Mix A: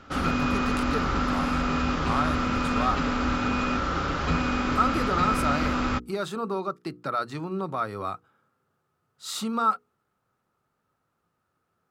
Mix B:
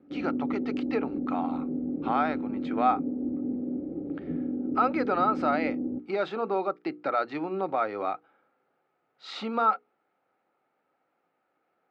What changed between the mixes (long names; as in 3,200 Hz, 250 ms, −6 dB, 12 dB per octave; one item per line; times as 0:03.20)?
background: add inverse Chebyshev low-pass filter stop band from 1,600 Hz, stop band 70 dB
master: add loudspeaker in its box 290–3,900 Hz, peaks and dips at 300 Hz +7 dB, 530 Hz +5 dB, 770 Hz +9 dB, 1,100 Hz −5 dB, 2,200 Hz +7 dB, 3,500 Hz −3 dB